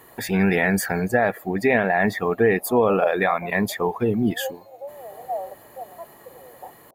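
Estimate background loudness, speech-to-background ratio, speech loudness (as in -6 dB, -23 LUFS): -35.0 LUFS, 13.5 dB, -21.5 LUFS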